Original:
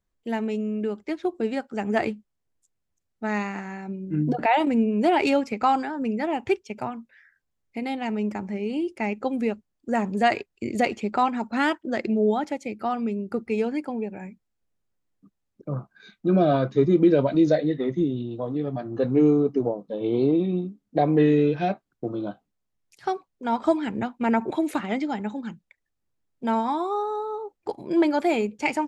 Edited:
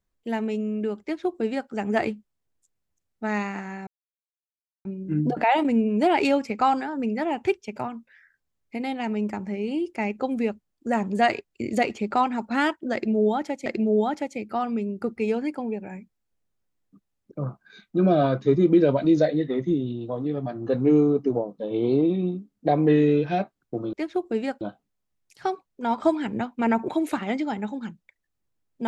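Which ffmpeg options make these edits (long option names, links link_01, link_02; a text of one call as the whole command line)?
ffmpeg -i in.wav -filter_complex "[0:a]asplit=5[link_01][link_02][link_03][link_04][link_05];[link_01]atrim=end=3.87,asetpts=PTS-STARTPTS,afade=type=out:start_time=3.866:duration=0.004:curve=hsin,apad=pad_dur=0.98[link_06];[link_02]atrim=start=3.87:end=12.682,asetpts=PTS-STARTPTS,afade=type=in:duration=0.004:curve=hsin[link_07];[link_03]atrim=start=11.958:end=22.232[link_08];[link_04]atrim=start=1.018:end=1.702[link_09];[link_05]atrim=start=22.228[link_10];[link_06][link_07]concat=n=2:v=0:a=1[link_11];[link_11][link_08]acrossfade=duration=0.004:curve1=hsin:curve2=hsin[link_12];[link_12][link_09]acrossfade=duration=0.004:curve1=hsin:curve2=hsin[link_13];[link_13][link_10]acrossfade=duration=0.004:curve1=hsin:curve2=hsin" out.wav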